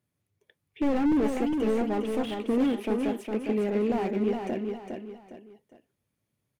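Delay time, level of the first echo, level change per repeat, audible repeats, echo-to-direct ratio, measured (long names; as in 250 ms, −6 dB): 408 ms, −5.0 dB, −9.0 dB, 3, −4.5 dB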